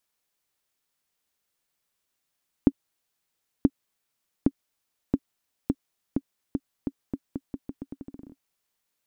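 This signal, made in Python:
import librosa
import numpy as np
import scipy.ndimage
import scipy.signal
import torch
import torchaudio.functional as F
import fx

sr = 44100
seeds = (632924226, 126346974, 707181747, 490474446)

y = fx.bouncing_ball(sr, first_gap_s=0.98, ratio=0.83, hz=274.0, decay_ms=49.0, level_db=-5.0)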